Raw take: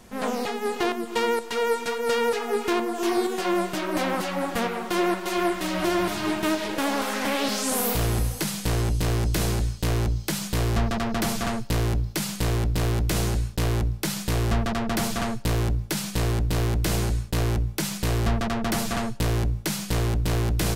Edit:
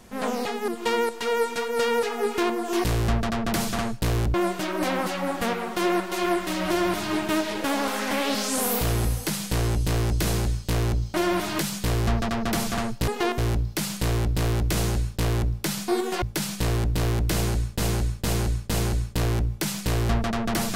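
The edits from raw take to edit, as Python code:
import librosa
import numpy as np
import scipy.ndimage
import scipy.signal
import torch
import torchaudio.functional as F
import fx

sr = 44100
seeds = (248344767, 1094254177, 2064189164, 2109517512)

y = fx.edit(x, sr, fx.move(start_s=0.68, length_s=0.3, to_s=11.77),
    fx.swap(start_s=3.14, length_s=0.34, other_s=14.27, other_length_s=1.5),
    fx.duplicate(start_s=5.82, length_s=0.45, to_s=10.28),
    fx.repeat(start_s=16.88, length_s=0.46, count=4), tone=tone)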